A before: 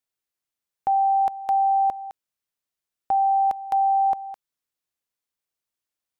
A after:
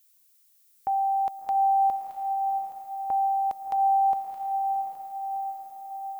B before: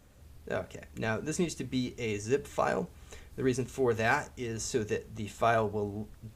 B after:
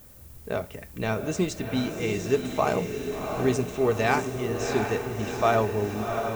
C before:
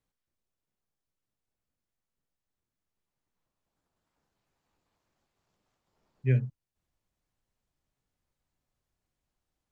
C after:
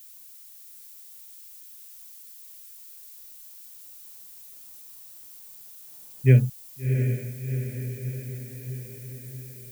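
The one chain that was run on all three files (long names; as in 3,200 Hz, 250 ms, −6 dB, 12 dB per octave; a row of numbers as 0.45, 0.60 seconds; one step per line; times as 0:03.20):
low-pass that shuts in the quiet parts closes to 2,700 Hz, open at −23 dBFS
background noise violet −57 dBFS
dynamic equaliser 1,600 Hz, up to −7 dB, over −54 dBFS, Q 7.4
on a send: feedback delay with all-pass diffusion 708 ms, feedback 60%, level −6 dB
on the sum: loudness normalisation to −27 LKFS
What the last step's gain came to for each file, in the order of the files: −5.0, +5.0, +9.5 decibels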